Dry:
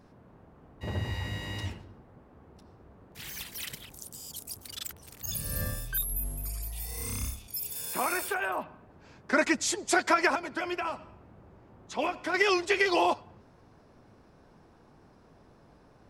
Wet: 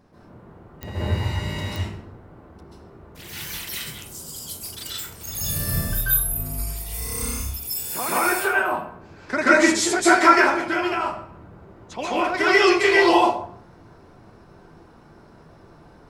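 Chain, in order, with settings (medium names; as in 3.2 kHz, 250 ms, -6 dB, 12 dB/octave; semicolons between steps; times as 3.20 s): 5.10–6.44 s: doubling 32 ms -5 dB; plate-style reverb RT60 0.55 s, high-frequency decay 0.65×, pre-delay 120 ms, DRR -8.5 dB; clicks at 0.83/1.76 s, -18 dBFS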